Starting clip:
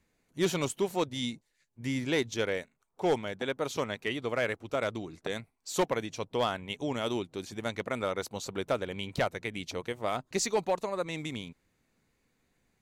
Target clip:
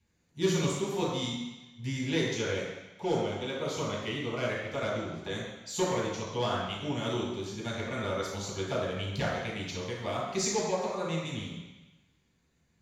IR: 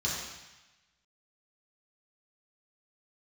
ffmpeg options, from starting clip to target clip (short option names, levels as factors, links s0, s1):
-filter_complex "[0:a]asettb=1/sr,asplit=3[s0][s1][s2];[s0]atrim=end=2.514[s3];[s1]atrim=start=2.51:end=4.48,asetpts=PTS-STARTPTS,afade=t=in:d=0.004:c=qsin,afade=t=out:st=1.966:d=0.004:c=qsin,bandreject=f=1700:w=5.2[s4];[s2]atrim=start=4.476[s5];[s3][s4]acrossfade=d=0.004:c1=hsin:c2=qsin[s6];[s6][s5]acrossfade=d=0.004:c1=qsin:c2=hsin[s7];[1:a]atrim=start_sample=2205[s8];[s7][s8]afir=irnorm=-1:irlink=0,volume=0.422"